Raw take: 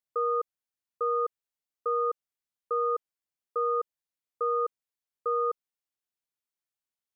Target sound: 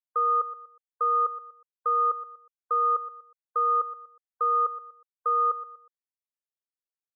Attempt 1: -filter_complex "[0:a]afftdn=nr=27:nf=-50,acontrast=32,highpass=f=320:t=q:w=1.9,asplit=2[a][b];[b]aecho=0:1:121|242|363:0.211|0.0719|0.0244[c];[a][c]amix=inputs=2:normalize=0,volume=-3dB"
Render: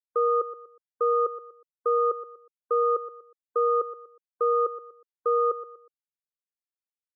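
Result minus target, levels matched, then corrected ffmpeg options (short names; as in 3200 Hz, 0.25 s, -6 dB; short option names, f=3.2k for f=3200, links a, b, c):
250 Hz band +16.5 dB
-filter_complex "[0:a]afftdn=nr=27:nf=-50,acontrast=32,highpass=f=850:t=q:w=1.9,asplit=2[a][b];[b]aecho=0:1:121|242|363:0.211|0.0719|0.0244[c];[a][c]amix=inputs=2:normalize=0,volume=-3dB"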